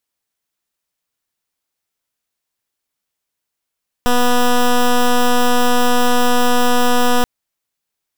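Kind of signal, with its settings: pulse 245 Hz, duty 11% -12 dBFS 3.18 s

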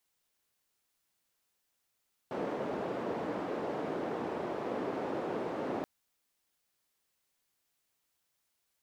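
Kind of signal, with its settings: noise band 280–480 Hz, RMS -36 dBFS 3.53 s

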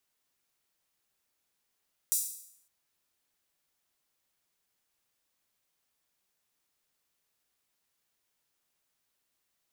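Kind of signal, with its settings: open hi-hat length 0.56 s, high-pass 7600 Hz, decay 0.69 s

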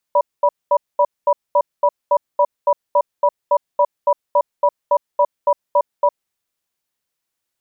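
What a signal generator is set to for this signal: cadence 582 Hz, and 973 Hz, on 0.06 s, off 0.22 s, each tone -13 dBFS 6.08 s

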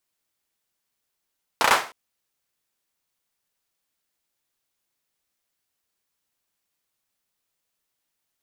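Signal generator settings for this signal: hand clap length 0.31 s, bursts 4, apart 33 ms, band 1000 Hz, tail 0.36 s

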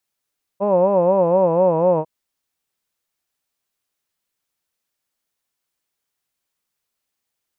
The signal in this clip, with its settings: formant vowel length 1.45 s, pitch 193 Hz, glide -2.5 st, vibrato 4.1 Hz, vibrato depth 1.35 st, F1 550 Hz, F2 960 Hz, F3 2600 Hz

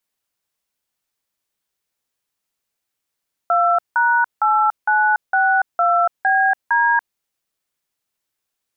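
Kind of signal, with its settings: DTMF "2#8962BD", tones 0.286 s, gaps 0.172 s, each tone -15.5 dBFS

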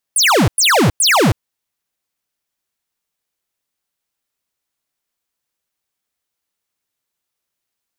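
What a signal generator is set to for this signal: burst of laser zaps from 11000 Hz, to 87 Hz, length 0.32 s square, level -11.5 dB, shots 3, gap 0.10 s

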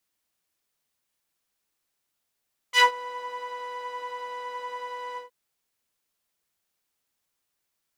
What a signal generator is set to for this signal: synth patch with pulse-width modulation B5, detune 20 cents, sub -8.5 dB, noise -8 dB, filter bandpass, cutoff 410 Hz, Q 1.2, filter envelope 3.5 oct, filter decay 0.14 s, filter sustain 25%, attack 71 ms, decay 0.11 s, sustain -21 dB, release 0.13 s, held 2.44 s, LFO 10 Hz, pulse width 18%, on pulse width 8%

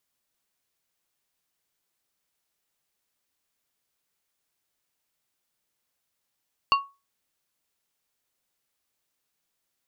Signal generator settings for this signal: glass hit plate, lowest mode 1110 Hz, modes 3, decay 0.27 s, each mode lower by 5 dB, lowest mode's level -14 dB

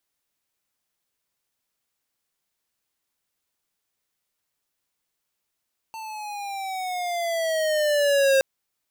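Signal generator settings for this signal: gliding synth tone square, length 2.47 s, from 896 Hz, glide -9 st, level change +18.5 dB, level -17.5 dB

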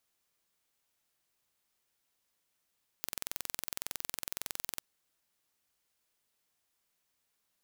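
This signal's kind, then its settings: pulse train 21.8/s, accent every 0, -8.5 dBFS 1.76 s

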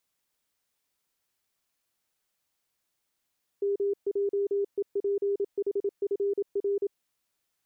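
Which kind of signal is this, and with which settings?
Morse "MJEPHFR" 27 wpm 401 Hz -24 dBFS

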